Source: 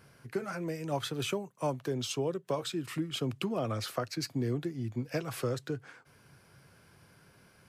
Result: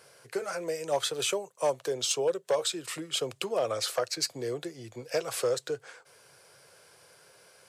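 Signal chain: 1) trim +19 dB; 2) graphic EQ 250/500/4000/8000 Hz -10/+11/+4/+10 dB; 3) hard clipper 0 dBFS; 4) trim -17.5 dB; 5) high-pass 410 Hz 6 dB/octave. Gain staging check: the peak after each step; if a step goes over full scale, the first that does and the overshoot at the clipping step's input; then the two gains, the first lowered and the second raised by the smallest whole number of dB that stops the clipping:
+1.5 dBFS, +6.5 dBFS, 0.0 dBFS, -17.5 dBFS, -15.0 dBFS; step 1, 6.5 dB; step 1 +12 dB, step 4 -10.5 dB

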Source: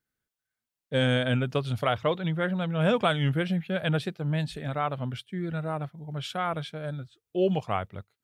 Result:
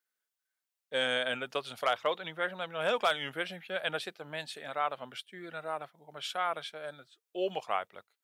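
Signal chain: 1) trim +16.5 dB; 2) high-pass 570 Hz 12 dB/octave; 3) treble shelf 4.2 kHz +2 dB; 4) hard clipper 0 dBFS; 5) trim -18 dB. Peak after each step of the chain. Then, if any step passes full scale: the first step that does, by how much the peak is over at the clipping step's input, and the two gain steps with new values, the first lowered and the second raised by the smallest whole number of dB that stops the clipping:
+5.5 dBFS, +5.0 dBFS, +5.0 dBFS, 0.0 dBFS, -18.0 dBFS; step 1, 5.0 dB; step 1 +11.5 dB, step 5 -13 dB

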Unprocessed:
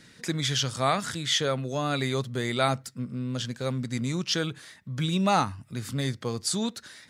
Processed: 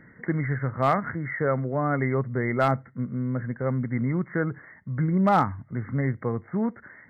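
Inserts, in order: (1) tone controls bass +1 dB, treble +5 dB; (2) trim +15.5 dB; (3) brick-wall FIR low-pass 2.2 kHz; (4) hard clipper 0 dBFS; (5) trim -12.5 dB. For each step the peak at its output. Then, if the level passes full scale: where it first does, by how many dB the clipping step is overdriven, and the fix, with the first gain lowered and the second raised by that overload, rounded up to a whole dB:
-9.5 dBFS, +6.0 dBFS, +4.0 dBFS, 0.0 dBFS, -12.5 dBFS; step 2, 4.0 dB; step 2 +11.5 dB, step 5 -8.5 dB

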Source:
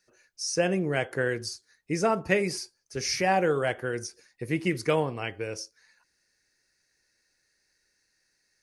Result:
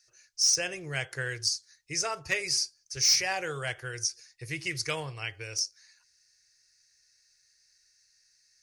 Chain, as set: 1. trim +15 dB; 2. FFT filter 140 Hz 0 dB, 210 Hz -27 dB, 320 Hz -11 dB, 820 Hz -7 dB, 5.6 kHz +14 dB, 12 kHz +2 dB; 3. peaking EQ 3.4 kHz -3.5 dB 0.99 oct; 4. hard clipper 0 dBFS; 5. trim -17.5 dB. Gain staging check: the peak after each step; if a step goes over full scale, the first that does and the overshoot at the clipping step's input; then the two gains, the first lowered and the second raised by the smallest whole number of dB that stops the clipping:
+6.5 dBFS, +10.5 dBFS, +9.5 dBFS, 0.0 dBFS, -17.5 dBFS; step 1, 9.5 dB; step 1 +5 dB, step 5 -7.5 dB

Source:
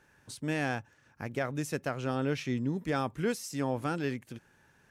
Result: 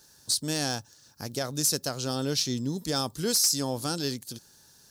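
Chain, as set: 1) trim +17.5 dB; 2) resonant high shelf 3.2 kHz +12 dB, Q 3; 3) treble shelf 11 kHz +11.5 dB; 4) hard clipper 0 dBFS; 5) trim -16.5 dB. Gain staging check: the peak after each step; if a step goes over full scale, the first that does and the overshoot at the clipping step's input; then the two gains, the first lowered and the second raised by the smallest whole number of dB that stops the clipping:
-2.5 dBFS, +3.0 dBFS, +6.0 dBFS, 0.0 dBFS, -16.5 dBFS; step 2, 6.0 dB; step 1 +11.5 dB, step 5 -10.5 dB

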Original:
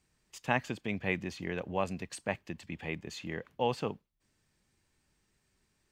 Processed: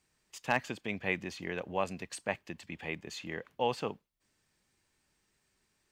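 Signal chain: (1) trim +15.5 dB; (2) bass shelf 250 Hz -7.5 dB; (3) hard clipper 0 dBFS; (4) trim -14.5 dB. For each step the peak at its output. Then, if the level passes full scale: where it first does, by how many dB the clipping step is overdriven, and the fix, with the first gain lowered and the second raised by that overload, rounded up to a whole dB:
+4.5 dBFS, +4.0 dBFS, 0.0 dBFS, -14.5 dBFS; step 1, 4.0 dB; step 1 +11.5 dB, step 4 -10.5 dB

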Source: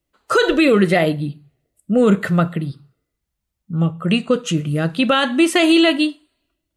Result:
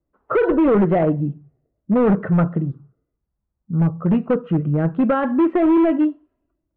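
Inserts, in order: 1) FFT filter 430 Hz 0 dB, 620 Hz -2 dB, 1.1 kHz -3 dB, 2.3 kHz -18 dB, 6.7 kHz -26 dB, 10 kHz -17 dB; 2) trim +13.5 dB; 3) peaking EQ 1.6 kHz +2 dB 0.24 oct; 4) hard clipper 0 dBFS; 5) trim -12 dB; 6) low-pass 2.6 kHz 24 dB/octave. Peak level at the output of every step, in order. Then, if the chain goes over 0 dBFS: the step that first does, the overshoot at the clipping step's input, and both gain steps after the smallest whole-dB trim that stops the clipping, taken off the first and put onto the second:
-4.5 dBFS, +9.0 dBFS, +9.0 dBFS, 0.0 dBFS, -12.0 dBFS, -11.5 dBFS; step 2, 9.0 dB; step 2 +4.5 dB, step 5 -3 dB

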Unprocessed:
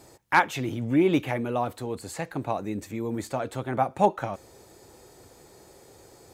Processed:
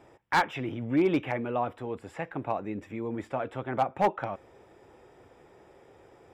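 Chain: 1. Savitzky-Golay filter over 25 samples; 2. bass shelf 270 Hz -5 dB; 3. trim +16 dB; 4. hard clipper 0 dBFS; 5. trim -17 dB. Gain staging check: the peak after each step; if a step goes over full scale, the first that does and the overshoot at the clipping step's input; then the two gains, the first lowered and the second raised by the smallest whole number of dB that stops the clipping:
-6.5 dBFS, -7.0 dBFS, +9.0 dBFS, 0.0 dBFS, -17.0 dBFS; step 3, 9.0 dB; step 3 +7 dB, step 5 -8 dB

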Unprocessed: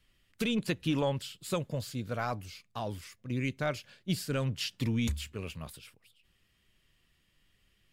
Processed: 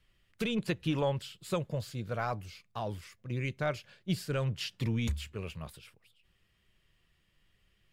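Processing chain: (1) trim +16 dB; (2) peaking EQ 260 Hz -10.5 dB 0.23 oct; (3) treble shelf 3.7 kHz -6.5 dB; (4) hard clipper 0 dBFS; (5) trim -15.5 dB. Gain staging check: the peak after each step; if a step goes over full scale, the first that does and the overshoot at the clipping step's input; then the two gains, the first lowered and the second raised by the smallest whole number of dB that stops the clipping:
-3.5 dBFS, -4.5 dBFS, -5.0 dBFS, -5.0 dBFS, -20.5 dBFS; nothing clips

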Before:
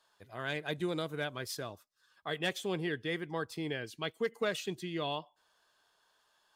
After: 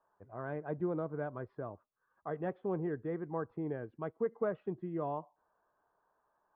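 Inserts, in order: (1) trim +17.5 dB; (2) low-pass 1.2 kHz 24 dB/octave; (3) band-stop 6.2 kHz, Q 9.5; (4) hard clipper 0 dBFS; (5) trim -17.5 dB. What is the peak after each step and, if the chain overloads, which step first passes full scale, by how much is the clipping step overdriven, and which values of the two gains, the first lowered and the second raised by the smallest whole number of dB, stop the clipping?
-3.0 dBFS, -4.5 dBFS, -4.5 dBFS, -4.5 dBFS, -22.0 dBFS; nothing clips

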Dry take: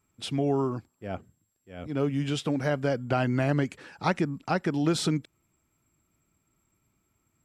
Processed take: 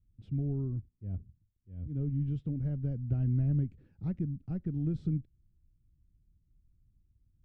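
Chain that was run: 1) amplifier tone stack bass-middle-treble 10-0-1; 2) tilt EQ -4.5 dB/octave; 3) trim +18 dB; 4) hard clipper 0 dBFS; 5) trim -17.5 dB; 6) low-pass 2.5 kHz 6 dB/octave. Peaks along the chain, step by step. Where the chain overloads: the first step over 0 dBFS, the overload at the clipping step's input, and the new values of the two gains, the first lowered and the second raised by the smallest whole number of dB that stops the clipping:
-32.5 dBFS, -20.0 dBFS, -2.0 dBFS, -2.0 dBFS, -19.5 dBFS, -19.5 dBFS; nothing clips

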